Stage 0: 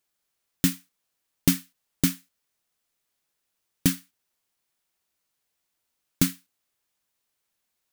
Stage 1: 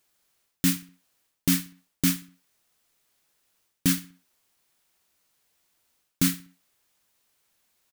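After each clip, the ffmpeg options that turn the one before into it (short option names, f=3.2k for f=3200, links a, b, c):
-filter_complex "[0:a]areverse,acompressor=threshold=-27dB:ratio=12,areverse,asplit=2[a][b];[b]adelay=62,lowpass=f=4.2k:p=1,volume=-17.5dB,asplit=2[c][d];[d]adelay=62,lowpass=f=4.2k:p=1,volume=0.46,asplit=2[e][f];[f]adelay=62,lowpass=f=4.2k:p=1,volume=0.46,asplit=2[g][h];[h]adelay=62,lowpass=f=4.2k:p=1,volume=0.46[i];[a][c][e][g][i]amix=inputs=5:normalize=0,volume=8dB"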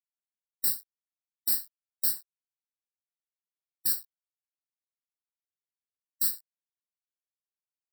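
-af "aeval=exprs='val(0)*gte(abs(val(0)),0.0112)':c=same,aderivative,afftfilt=real='re*eq(mod(floor(b*sr/1024/1900),2),0)':imag='im*eq(mod(floor(b*sr/1024/1900),2),0)':win_size=1024:overlap=0.75"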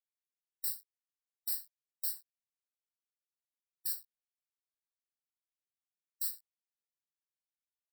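-af "highpass=1.5k,volume=-9dB"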